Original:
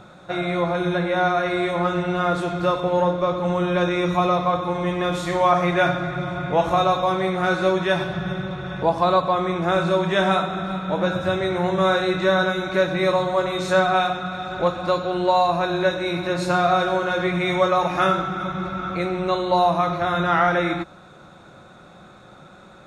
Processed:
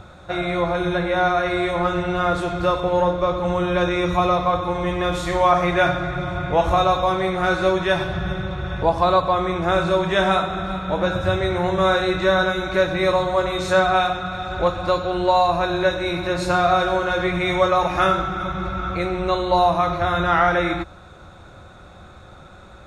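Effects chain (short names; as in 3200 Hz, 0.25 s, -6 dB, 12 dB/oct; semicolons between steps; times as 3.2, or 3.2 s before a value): resonant low shelf 110 Hz +12 dB, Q 1.5; gain +1.5 dB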